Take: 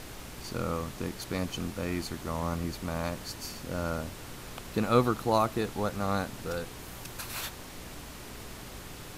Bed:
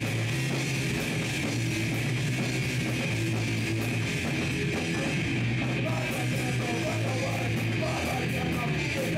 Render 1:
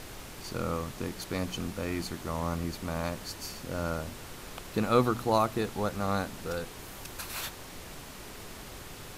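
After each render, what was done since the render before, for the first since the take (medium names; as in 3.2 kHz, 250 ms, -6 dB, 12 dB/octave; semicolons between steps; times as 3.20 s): de-hum 60 Hz, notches 5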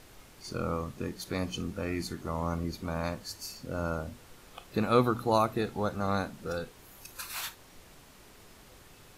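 noise print and reduce 10 dB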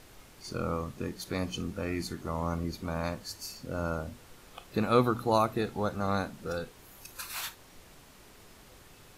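no audible change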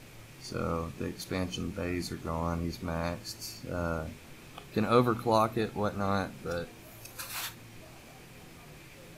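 add bed -24 dB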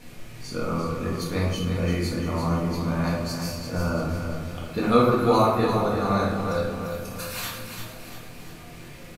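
on a send: feedback delay 344 ms, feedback 48%, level -7 dB; on the sum: simulated room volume 250 m³, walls mixed, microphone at 1.8 m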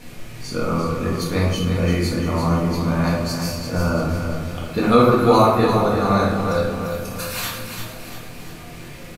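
trim +5.5 dB; peak limiter -2 dBFS, peak gain reduction 2 dB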